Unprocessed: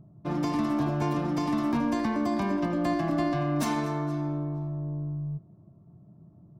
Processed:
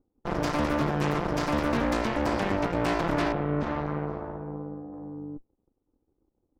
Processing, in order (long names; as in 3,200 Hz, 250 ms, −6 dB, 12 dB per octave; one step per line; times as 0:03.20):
harmonic generator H 3 −22 dB, 5 −33 dB, 6 −11 dB, 7 −18 dB, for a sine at −15.5 dBFS
0:03.32–0:04.93: head-to-tape spacing loss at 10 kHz 40 dB